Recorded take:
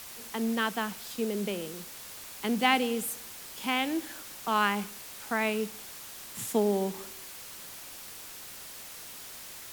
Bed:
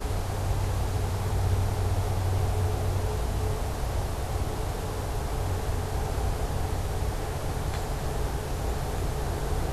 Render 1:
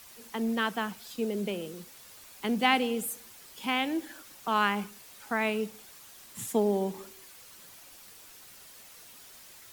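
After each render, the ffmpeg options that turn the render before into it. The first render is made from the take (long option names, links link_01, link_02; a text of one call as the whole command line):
ffmpeg -i in.wav -af "afftdn=noise_reduction=8:noise_floor=-45" out.wav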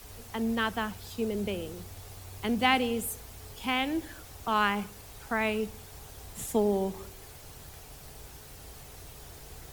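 ffmpeg -i in.wav -i bed.wav -filter_complex "[1:a]volume=-20dB[link_01];[0:a][link_01]amix=inputs=2:normalize=0" out.wav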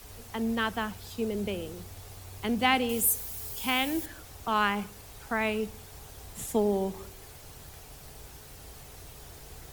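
ffmpeg -i in.wav -filter_complex "[0:a]asettb=1/sr,asplit=3[link_01][link_02][link_03];[link_01]atrim=end=2.894[link_04];[link_02]atrim=start=2.89:end=4.06,asetpts=PTS-STARTPTS,afade=type=in:duration=0.004:curve=qsin,afade=type=out:start_time=1.166:duration=0.004:curve=qsin,aemphasis=mode=production:type=50kf[link_05];[link_03]atrim=start=4.056[link_06];[link_04][link_05]acrossfade=duration=0.004:curve1=hsin:curve2=qsin[link_07];[link_07][link_06]acrossfade=duration=0.004:curve1=qsin:curve2=hsin" out.wav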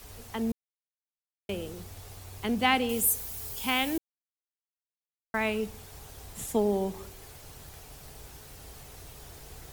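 ffmpeg -i in.wav -filter_complex "[0:a]asplit=5[link_01][link_02][link_03][link_04][link_05];[link_01]atrim=end=0.52,asetpts=PTS-STARTPTS,afade=type=out:start_time=0.516:duration=0.004:curve=hsin[link_06];[link_02]atrim=start=0.52:end=1.49,asetpts=PTS-STARTPTS,volume=0[link_07];[link_03]atrim=start=1.49:end=3.98,asetpts=PTS-STARTPTS,afade=type=in:duration=0.004:curve=hsin,afade=type=out:start_time=2.486:duration=0.004:curve=hsin[link_08];[link_04]atrim=start=3.98:end=5.34,asetpts=PTS-STARTPTS,volume=0[link_09];[link_05]atrim=start=5.34,asetpts=PTS-STARTPTS,afade=type=in:duration=0.004:curve=hsin[link_10];[link_06][link_07][link_08][link_09][link_10]concat=n=5:v=0:a=1" out.wav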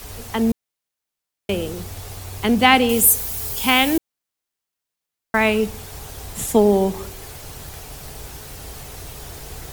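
ffmpeg -i in.wav -af "volume=11.5dB,alimiter=limit=-1dB:level=0:latency=1" out.wav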